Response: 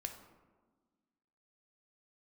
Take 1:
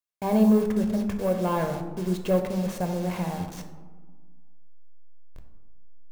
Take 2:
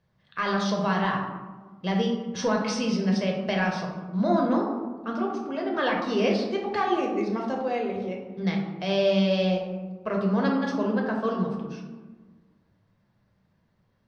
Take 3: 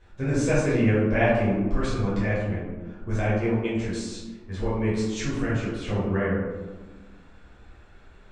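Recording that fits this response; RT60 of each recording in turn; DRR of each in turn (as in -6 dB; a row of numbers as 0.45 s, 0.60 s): 1; 1.4 s, 1.4 s, 1.4 s; 5.0 dB, -0.5 dB, -10.0 dB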